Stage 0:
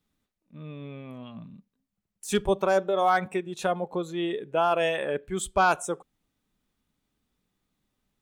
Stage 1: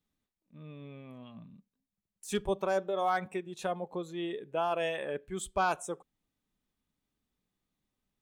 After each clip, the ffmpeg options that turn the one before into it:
-af "bandreject=f=1.4k:w=17,volume=-7dB"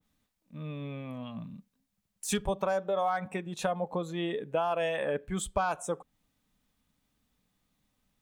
-af "equalizer=f=370:w=6.8:g=-13,acompressor=threshold=-35dB:ratio=6,adynamicequalizer=threshold=0.00141:dfrequency=1900:dqfactor=0.7:tfrequency=1900:tqfactor=0.7:attack=5:release=100:ratio=0.375:range=3:mode=cutabove:tftype=highshelf,volume=9dB"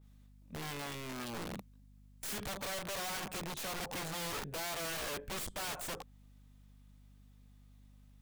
-af "aeval=exprs='val(0)+0.000891*(sin(2*PI*50*n/s)+sin(2*PI*2*50*n/s)/2+sin(2*PI*3*50*n/s)/3+sin(2*PI*4*50*n/s)/4+sin(2*PI*5*50*n/s)/5)':c=same,aeval=exprs='(tanh(50.1*val(0)+0.6)-tanh(0.6))/50.1':c=same,aeval=exprs='(mod(119*val(0)+1,2)-1)/119':c=same,volume=5.5dB"

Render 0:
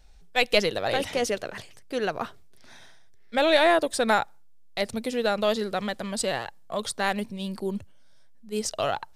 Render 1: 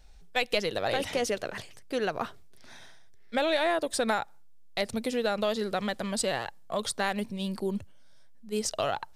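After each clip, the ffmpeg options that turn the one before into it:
-af "acompressor=threshold=-25dB:ratio=3"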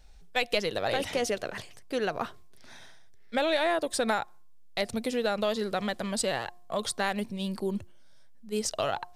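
-af "bandreject=f=355.5:t=h:w=4,bandreject=f=711:t=h:w=4,bandreject=f=1.0665k:t=h:w=4"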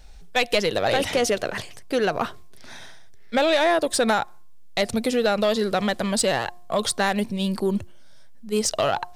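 -af "asoftclip=type=tanh:threshold=-20dB,volume=8.5dB"

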